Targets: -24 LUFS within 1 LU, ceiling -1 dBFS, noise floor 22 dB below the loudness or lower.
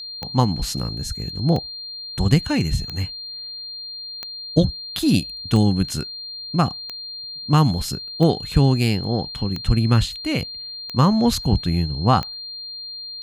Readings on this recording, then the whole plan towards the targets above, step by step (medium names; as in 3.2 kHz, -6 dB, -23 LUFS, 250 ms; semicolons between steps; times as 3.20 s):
clicks found 10; steady tone 4.2 kHz; tone level -31 dBFS; loudness -22.0 LUFS; peak level -2.0 dBFS; loudness target -24.0 LUFS
-> de-click; band-stop 4.2 kHz, Q 30; trim -2 dB